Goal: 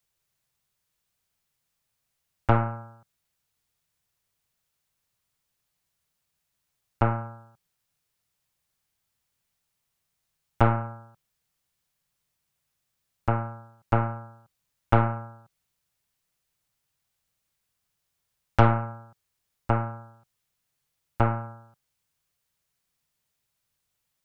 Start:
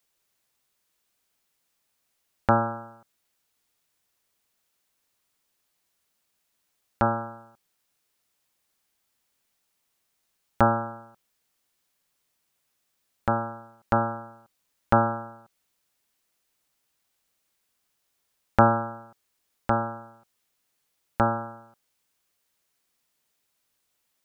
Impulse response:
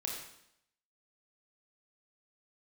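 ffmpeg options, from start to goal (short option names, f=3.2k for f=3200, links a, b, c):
-af "lowshelf=f=190:t=q:w=1.5:g=8,aeval=exprs='0.891*(cos(1*acos(clip(val(0)/0.891,-1,1)))-cos(1*PI/2))+0.141*(cos(4*acos(clip(val(0)/0.891,-1,1)))-cos(4*PI/2))+0.0447*(cos(8*acos(clip(val(0)/0.891,-1,1)))-cos(8*PI/2))':c=same,volume=-4dB"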